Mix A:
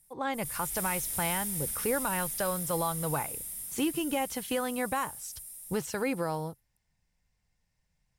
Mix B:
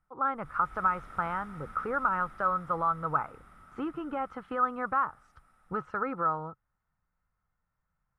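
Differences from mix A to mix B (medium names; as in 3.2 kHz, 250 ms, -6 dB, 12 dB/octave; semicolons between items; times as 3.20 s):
speech -5.5 dB; master: add resonant low-pass 1.3 kHz, resonance Q 15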